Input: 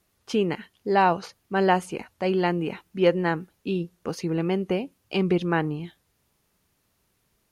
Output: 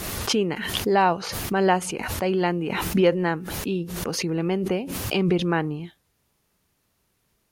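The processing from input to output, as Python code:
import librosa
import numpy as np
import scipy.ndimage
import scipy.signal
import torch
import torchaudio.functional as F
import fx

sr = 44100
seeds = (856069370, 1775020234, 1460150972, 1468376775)

y = fx.pre_swell(x, sr, db_per_s=36.0)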